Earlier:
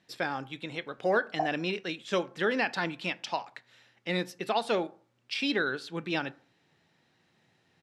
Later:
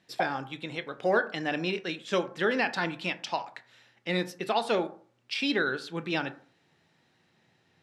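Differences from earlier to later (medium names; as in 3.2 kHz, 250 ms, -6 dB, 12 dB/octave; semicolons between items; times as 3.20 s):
speech: send +8.0 dB; background: entry -1.20 s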